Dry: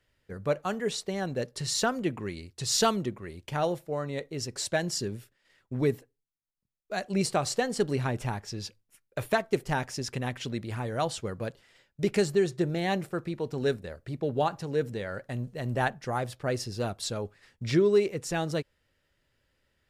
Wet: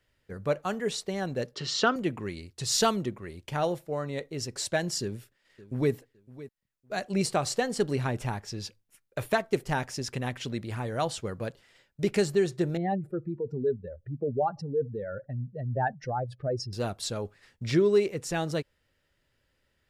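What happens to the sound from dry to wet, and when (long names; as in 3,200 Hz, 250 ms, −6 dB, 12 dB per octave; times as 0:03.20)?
0:01.54–0:01.96: loudspeaker in its box 160–5,900 Hz, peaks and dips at 290 Hz +7 dB, 420 Hz +4 dB, 1,300 Hz +8 dB, 3,100 Hz +9 dB
0:05.02–0:05.92: delay throw 560 ms, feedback 25%, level −17.5 dB
0:12.77–0:16.73: expanding power law on the bin magnitudes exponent 2.2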